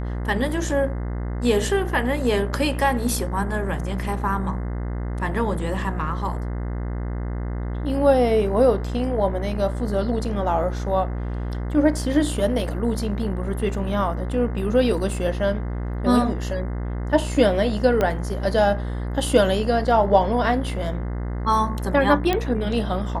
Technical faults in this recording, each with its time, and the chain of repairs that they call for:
mains buzz 60 Hz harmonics 35 −27 dBFS
0:18.01: click −9 dBFS
0:22.33: click −8 dBFS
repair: click removal
hum removal 60 Hz, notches 35

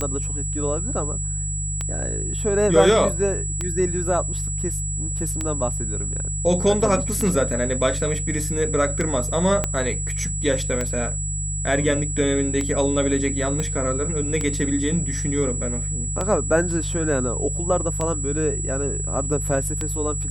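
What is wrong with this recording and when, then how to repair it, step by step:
mains hum 50 Hz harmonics 3 −28 dBFS
scratch tick 33 1/3 rpm −11 dBFS
whistle 7,800 Hz −28 dBFS
0:09.64: click −8 dBFS
0:13.60: click −14 dBFS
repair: click removal
notch filter 7,800 Hz, Q 30
hum removal 50 Hz, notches 3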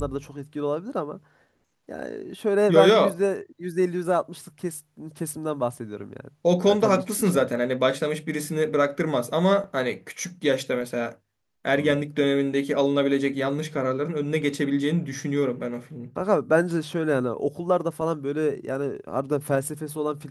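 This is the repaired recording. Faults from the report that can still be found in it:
0:09.64: click
0:13.60: click

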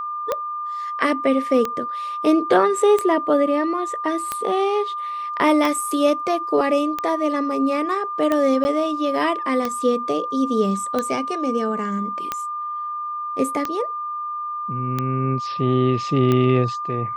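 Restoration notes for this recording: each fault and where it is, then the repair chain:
scratch tick 45 rpm −9 dBFS
whistle 1,200 Hz −25 dBFS
0:08.64–0:08.65: drop-out 10 ms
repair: click removal
notch filter 1,200 Hz, Q 30
repair the gap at 0:08.64, 10 ms

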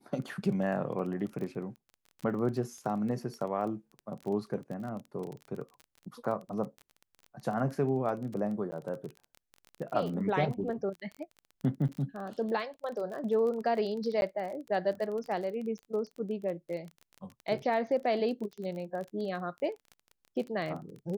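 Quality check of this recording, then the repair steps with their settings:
surface crackle 24 per second −37 dBFS
0:08.71–0:08.72: drop-out 10 ms
0:11.88–0:11.89: drop-out 8.4 ms
0:14.21–0:14.22: drop-out 11 ms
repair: click removal
repair the gap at 0:08.71, 10 ms
repair the gap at 0:11.88, 8.4 ms
repair the gap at 0:14.21, 11 ms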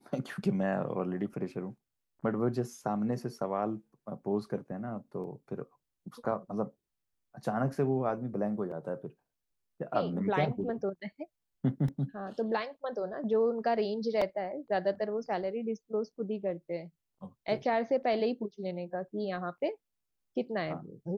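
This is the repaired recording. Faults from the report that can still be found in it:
none of them is left

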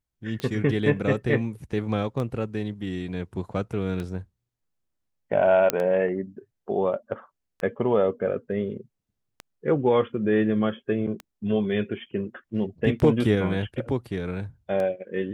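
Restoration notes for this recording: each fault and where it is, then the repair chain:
scratch tick 33 1/3 rpm −19 dBFS
0:05.70: click −5 dBFS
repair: click removal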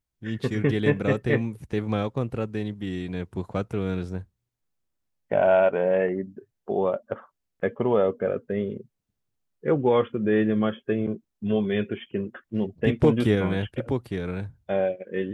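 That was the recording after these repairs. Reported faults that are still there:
none of them is left

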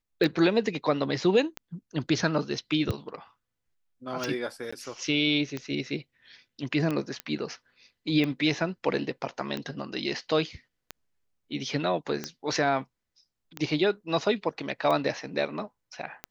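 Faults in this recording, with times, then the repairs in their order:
scratch tick 45 rpm −17 dBFS
0:04.71–0:04.72: drop-out 15 ms
0:07.20: click −17 dBFS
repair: click removal
repair the gap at 0:04.71, 15 ms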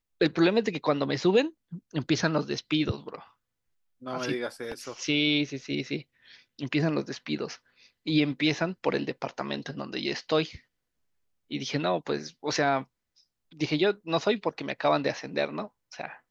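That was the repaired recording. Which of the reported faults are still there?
none of them is left

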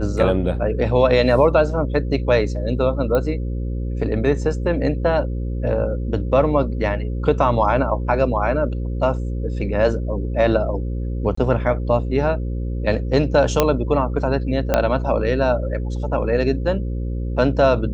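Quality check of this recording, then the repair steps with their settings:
mains buzz 60 Hz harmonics 9 −24 dBFS
0:03.15: click −10 dBFS
0:11.35–0:11.37: drop-out 24 ms
0:13.60: click −1 dBFS
0:14.74: click −3 dBFS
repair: click removal
hum removal 60 Hz, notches 9
repair the gap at 0:11.35, 24 ms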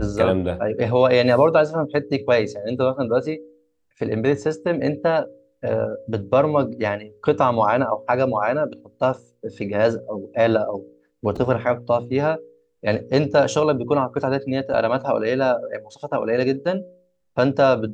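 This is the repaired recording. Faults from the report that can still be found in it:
0:14.74: click

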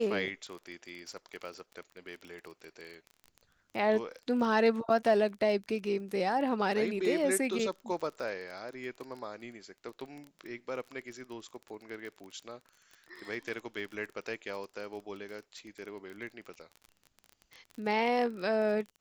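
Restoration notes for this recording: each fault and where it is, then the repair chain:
surface crackle 27 per second −39 dBFS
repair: click removal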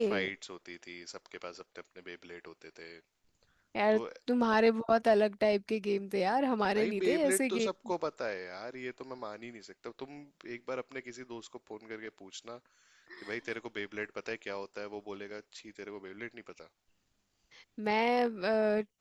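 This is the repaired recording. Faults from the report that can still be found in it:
none of them is left

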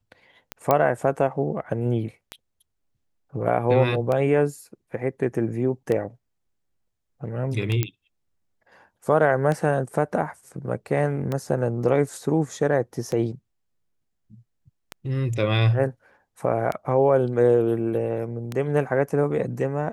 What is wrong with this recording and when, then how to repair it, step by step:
scratch tick 33 1/3 rpm −14 dBFS
0:00.71: click −6 dBFS
0:07.83: click −8 dBFS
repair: click removal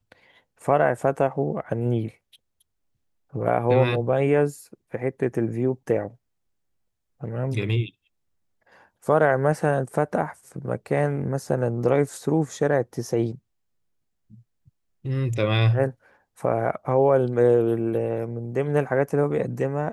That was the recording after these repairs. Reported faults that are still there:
none of them is left

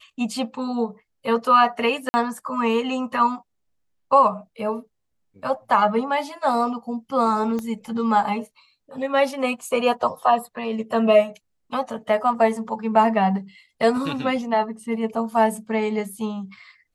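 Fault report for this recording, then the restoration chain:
0:02.09–0:02.14: drop-out 50 ms
0:07.59: click −17 dBFS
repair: click removal
repair the gap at 0:02.09, 50 ms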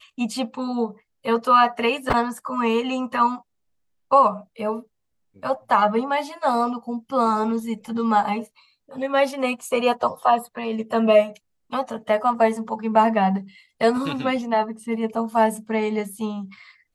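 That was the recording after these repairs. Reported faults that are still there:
0:07.59: click

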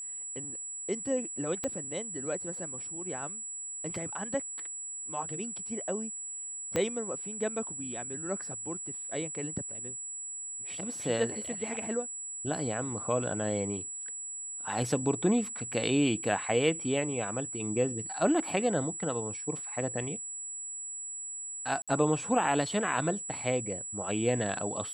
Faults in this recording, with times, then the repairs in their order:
whistle 7,800 Hz −37 dBFS
0:01.64: click −19 dBFS
0:06.76: click −15 dBFS
0:21.82–0:21.88: drop-out 56 ms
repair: click removal
notch filter 7,800 Hz, Q 30
repair the gap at 0:21.82, 56 ms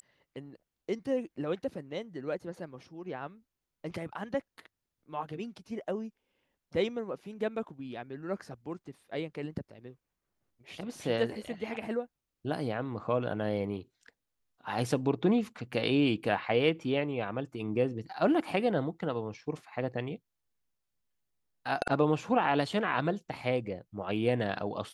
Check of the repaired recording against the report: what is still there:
0:01.64: click
0:06.76: click

